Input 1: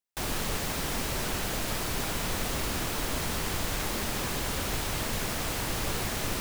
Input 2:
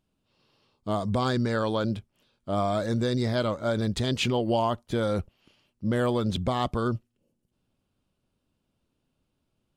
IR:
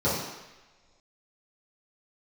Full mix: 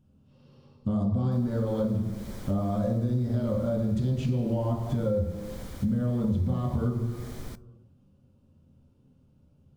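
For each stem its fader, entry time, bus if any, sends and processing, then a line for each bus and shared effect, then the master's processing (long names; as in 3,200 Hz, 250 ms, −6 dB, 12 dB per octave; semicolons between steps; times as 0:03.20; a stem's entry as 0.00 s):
−12.5 dB, 1.15 s, no send, notch filter 2,700 Hz, Q 6.9
−1.5 dB, 0.00 s, send −12 dB, harmonic and percussive parts rebalanced harmonic +6 dB; brickwall limiter −18.5 dBFS, peak gain reduction 8.5 dB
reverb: on, pre-delay 3 ms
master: low-shelf EQ 350 Hz +12 dB; tuned comb filter 260 Hz, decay 0.23 s, harmonics all, mix 40%; downward compressor 4 to 1, threshold −26 dBFS, peak gain reduction 14.5 dB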